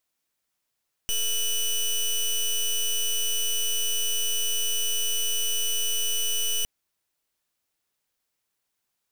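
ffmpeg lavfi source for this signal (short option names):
-f lavfi -i "aevalsrc='0.0562*(2*lt(mod(2970*t,1),0.17)-1)':d=5.56:s=44100"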